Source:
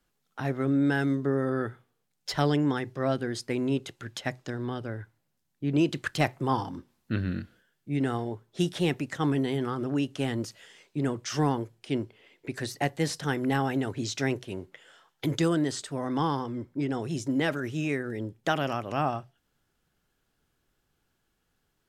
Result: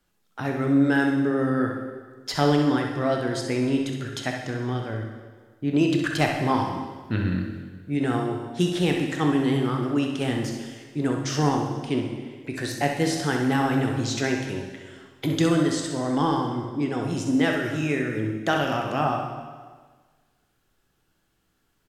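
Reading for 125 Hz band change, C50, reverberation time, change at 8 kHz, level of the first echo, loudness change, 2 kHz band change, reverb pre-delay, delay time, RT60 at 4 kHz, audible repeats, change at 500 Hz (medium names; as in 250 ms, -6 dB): +4.0 dB, 2.5 dB, 1.5 s, +5.0 dB, -6.5 dB, +4.5 dB, +5.5 dB, 6 ms, 65 ms, 1.4 s, 1, +4.5 dB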